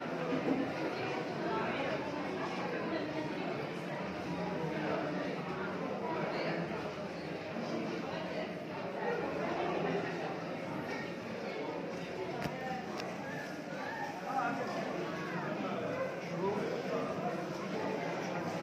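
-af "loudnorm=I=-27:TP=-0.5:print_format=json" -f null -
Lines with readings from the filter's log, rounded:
"input_i" : "-37.7",
"input_tp" : "-18.9",
"input_lra" : "1.6",
"input_thresh" : "-47.7",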